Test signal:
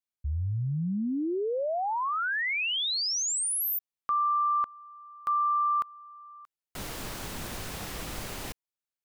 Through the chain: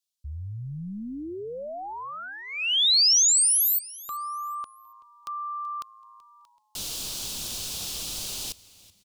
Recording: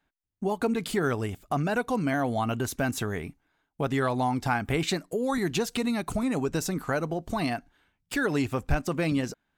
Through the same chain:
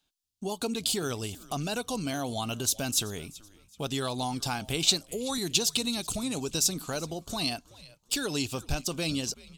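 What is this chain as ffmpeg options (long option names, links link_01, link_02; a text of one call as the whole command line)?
ffmpeg -i in.wav -filter_complex "[0:a]highshelf=frequency=2800:gain=-9.5,aexciter=amount=11:drive=8.2:freq=3000,highshelf=frequency=8700:gain=-8,asplit=2[link_01][link_02];[link_02]asplit=3[link_03][link_04][link_05];[link_03]adelay=380,afreqshift=-110,volume=-20.5dB[link_06];[link_04]adelay=760,afreqshift=-220,volume=-30.1dB[link_07];[link_05]adelay=1140,afreqshift=-330,volume=-39.8dB[link_08];[link_06][link_07][link_08]amix=inputs=3:normalize=0[link_09];[link_01][link_09]amix=inputs=2:normalize=0,volume=-5.5dB" out.wav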